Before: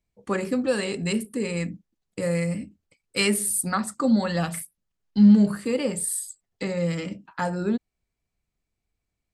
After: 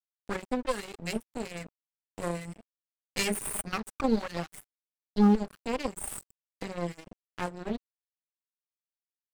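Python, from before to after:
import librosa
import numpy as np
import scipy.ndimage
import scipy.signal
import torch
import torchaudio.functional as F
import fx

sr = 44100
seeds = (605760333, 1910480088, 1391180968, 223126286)

y = fx.dereverb_blind(x, sr, rt60_s=0.73)
y = fx.cheby_harmonics(y, sr, harmonics=(2, 6, 8), levels_db=(-8, -13, -27), full_scale_db=-8.0)
y = np.sign(y) * np.maximum(np.abs(y) - 10.0 ** (-33.0 / 20.0), 0.0)
y = y * 10.0 ** (-6.0 / 20.0)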